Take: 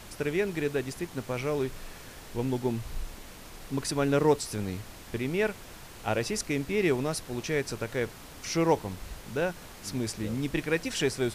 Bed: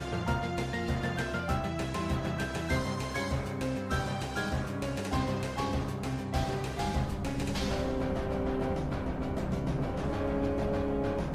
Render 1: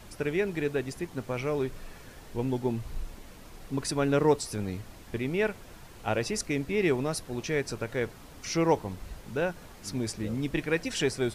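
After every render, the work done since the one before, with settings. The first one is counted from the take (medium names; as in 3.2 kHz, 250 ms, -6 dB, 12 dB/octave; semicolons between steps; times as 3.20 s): noise reduction 6 dB, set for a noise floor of -47 dBFS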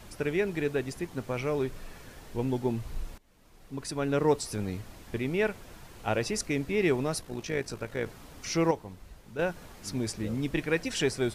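3.18–4.51 s: fade in, from -22.5 dB; 7.21–8.06 s: AM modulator 55 Hz, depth 40%; 8.71–9.39 s: gain -7.5 dB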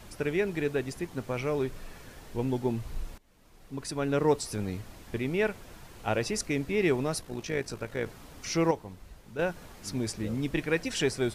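no audible change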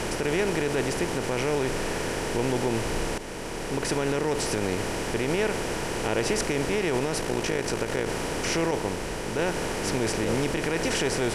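spectral levelling over time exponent 0.4; peak limiter -15 dBFS, peak gain reduction 7.5 dB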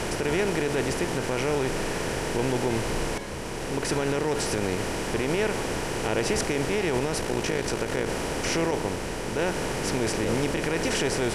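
add bed -8 dB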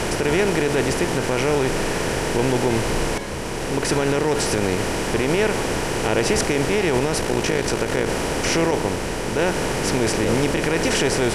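trim +6 dB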